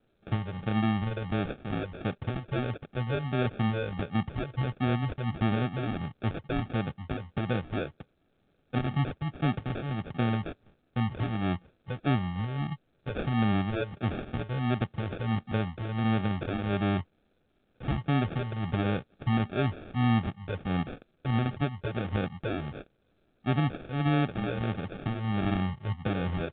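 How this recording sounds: a quantiser's noise floor 12-bit, dither triangular; phasing stages 4, 1.5 Hz, lowest notch 240–2500 Hz; aliases and images of a low sample rate 1000 Hz, jitter 0%; µ-law

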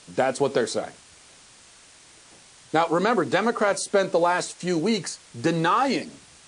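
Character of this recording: a quantiser's noise floor 8-bit, dither triangular; WMA

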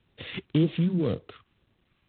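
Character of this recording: a buzz of ramps at a fixed pitch in blocks of 8 samples; phasing stages 2, 1.9 Hz, lowest notch 610–1300 Hz; G.726

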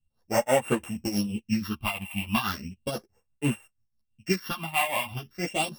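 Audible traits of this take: a buzz of ramps at a fixed pitch in blocks of 16 samples; phasing stages 6, 0.36 Hz, lowest notch 390–5000 Hz; tremolo triangle 6.1 Hz, depth 80%; a shimmering, thickened sound

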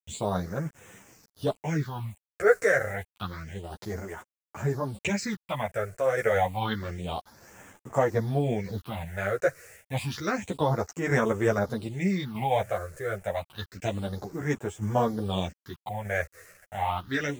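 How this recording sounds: a quantiser's noise floor 8-bit, dither none; phasing stages 6, 0.29 Hz, lowest notch 230–4200 Hz; tremolo saw down 0.81 Hz, depth 40%; a shimmering, thickened sound

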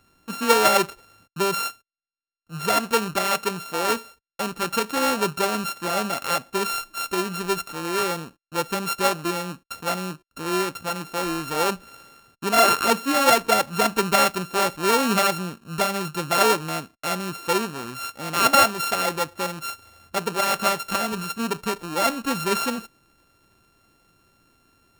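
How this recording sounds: a buzz of ramps at a fixed pitch in blocks of 32 samples

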